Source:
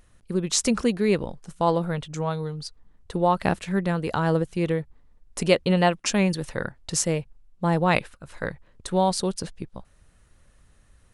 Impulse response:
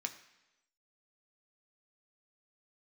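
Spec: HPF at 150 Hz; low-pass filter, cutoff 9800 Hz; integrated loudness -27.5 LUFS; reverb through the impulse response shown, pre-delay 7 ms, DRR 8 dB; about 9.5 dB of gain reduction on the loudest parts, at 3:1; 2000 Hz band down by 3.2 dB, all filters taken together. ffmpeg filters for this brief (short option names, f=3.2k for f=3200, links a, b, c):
-filter_complex "[0:a]highpass=150,lowpass=9.8k,equalizer=f=2k:t=o:g=-4,acompressor=threshold=-27dB:ratio=3,asplit=2[a][b];[1:a]atrim=start_sample=2205,adelay=7[c];[b][c]afir=irnorm=-1:irlink=0,volume=-8dB[d];[a][d]amix=inputs=2:normalize=0,volume=4dB"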